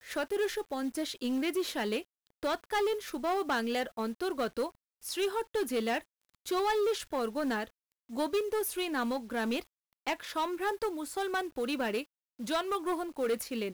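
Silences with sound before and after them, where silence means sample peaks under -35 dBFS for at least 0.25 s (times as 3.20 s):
2.00–2.43 s
4.67–5.05 s
5.99–6.47 s
7.64–8.16 s
9.61–10.07 s
12.02–12.40 s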